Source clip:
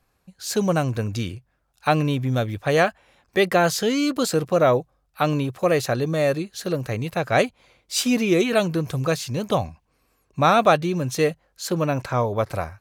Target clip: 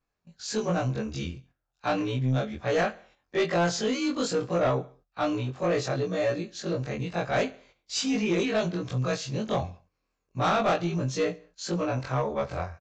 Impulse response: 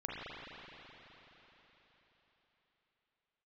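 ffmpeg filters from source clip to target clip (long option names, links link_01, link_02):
-af "afftfilt=real='re':imag='-im':win_size=2048:overlap=0.75,aecho=1:1:69|138|207:0.0794|0.0334|0.014,agate=range=-10dB:threshold=-54dB:ratio=16:detection=peak,aresample=16000,asoftclip=type=tanh:threshold=-18.5dB,aresample=44100"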